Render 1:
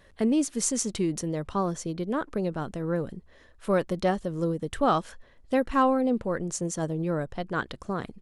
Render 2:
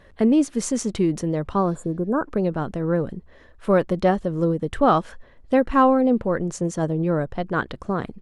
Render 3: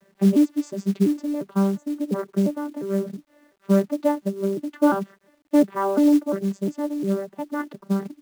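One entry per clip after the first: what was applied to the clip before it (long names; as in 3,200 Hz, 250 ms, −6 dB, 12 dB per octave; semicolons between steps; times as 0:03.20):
healed spectral selection 0:01.72–0:02.24, 1,700–6,800 Hz both; high-shelf EQ 3,700 Hz −11.5 dB; level +6.5 dB
vocoder with an arpeggio as carrier bare fifth, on G3, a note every 351 ms; log-companded quantiser 6 bits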